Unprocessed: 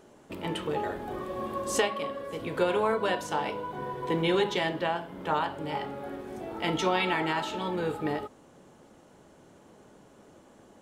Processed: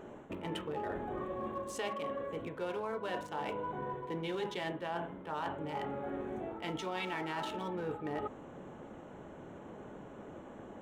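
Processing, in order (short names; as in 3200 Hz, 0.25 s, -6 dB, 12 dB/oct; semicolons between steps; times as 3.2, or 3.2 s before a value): Wiener smoothing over 9 samples; reverse; compressor 6:1, threshold -43 dBFS, peak gain reduction 21 dB; reverse; gain +6.5 dB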